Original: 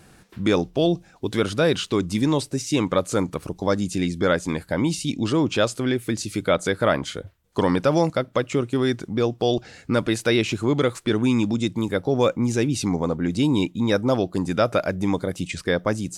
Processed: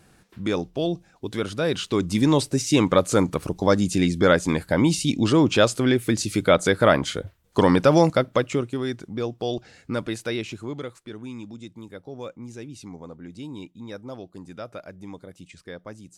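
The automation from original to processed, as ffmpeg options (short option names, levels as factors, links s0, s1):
-af "volume=1.41,afade=t=in:st=1.61:d=0.82:silence=0.398107,afade=t=out:st=8.21:d=0.57:silence=0.354813,afade=t=out:st=10.01:d=1.04:silence=0.298538"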